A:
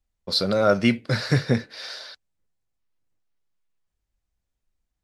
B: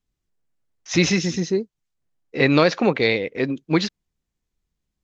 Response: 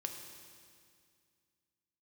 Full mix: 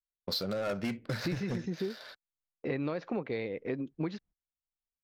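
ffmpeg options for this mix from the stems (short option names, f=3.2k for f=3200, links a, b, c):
-filter_complex "[0:a]asoftclip=type=hard:threshold=-16.5dB,adynamicsmooth=sensitivity=7.5:basefreq=1.9k,volume=-2dB[a];[1:a]lowpass=f=1.1k:p=1,adelay=300,volume=-3dB[b];[a][b]amix=inputs=2:normalize=0,agate=range=-26dB:threshold=-47dB:ratio=16:detection=peak,acompressor=threshold=-32dB:ratio=5"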